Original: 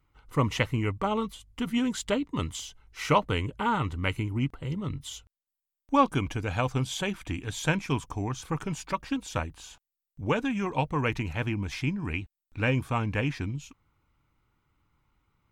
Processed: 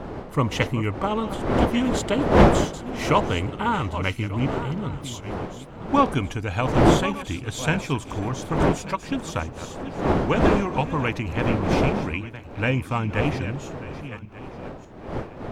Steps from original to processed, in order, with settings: backward echo that repeats 594 ms, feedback 41%, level -11.5 dB; wind noise 550 Hz -29 dBFS; trim +3 dB

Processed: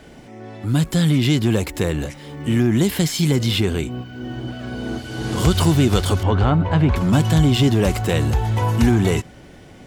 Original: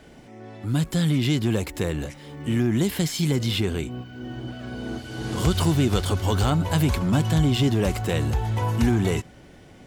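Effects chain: 6.23–6.96 s: low-pass 2.2 kHz 12 dB/octave; trim +5 dB

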